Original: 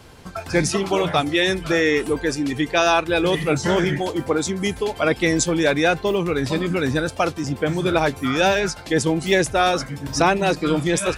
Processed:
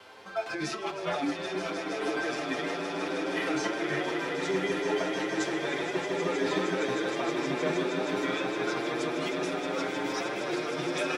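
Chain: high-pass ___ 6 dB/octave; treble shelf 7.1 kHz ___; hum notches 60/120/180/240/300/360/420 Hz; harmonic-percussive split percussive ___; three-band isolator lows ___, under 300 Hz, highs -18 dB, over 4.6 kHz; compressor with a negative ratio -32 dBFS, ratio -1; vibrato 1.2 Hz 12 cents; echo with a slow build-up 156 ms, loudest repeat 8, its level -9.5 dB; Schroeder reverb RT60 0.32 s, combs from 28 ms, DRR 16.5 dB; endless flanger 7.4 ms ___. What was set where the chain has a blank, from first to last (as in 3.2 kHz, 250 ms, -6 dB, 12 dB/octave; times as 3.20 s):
81 Hz, +6.5 dB, -14 dB, -23 dB, +0.61 Hz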